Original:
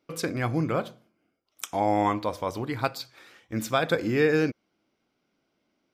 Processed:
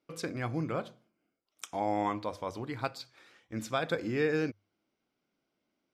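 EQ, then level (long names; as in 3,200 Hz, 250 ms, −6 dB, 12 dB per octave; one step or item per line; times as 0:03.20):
low-pass filter 10,000 Hz 12 dB per octave
mains-hum notches 50/100 Hz
−7.0 dB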